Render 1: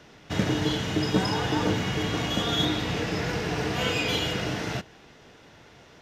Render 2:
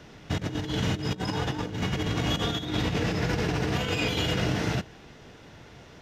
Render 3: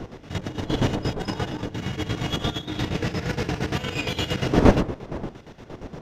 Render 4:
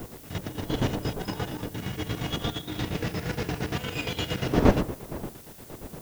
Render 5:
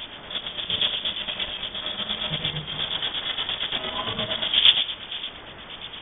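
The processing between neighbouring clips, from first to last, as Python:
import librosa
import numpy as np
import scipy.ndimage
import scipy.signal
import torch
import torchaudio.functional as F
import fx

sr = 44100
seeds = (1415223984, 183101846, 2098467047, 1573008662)

y1 = fx.low_shelf(x, sr, hz=220.0, db=7.0)
y1 = fx.over_compress(y1, sr, threshold_db=-26.0, ratio=-0.5)
y1 = F.gain(torch.from_numpy(y1), -1.5).numpy()
y2 = fx.dmg_wind(y1, sr, seeds[0], corner_hz=420.0, level_db=-28.0)
y2 = fx.chopper(y2, sr, hz=8.6, depth_pct=65, duty_pct=50)
y2 = F.gain(torch.from_numpy(y2), 2.5).numpy()
y3 = fx.dmg_noise_colour(y2, sr, seeds[1], colour='blue', level_db=-46.0)
y3 = F.gain(torch.from_numpy(y3), -4.0).numpy()
y4 = y3 + 0.5 * 10.0 ** (-17.5 / 20.0) * np.diff(np.sign(y3), prepend=np.sign(y3[:1]))
y4 = fx.freq_invert(y4, sr, carrier_hz=3500)
y4 = F.gain(torch.from_numpy(y4), 1.5).numpy()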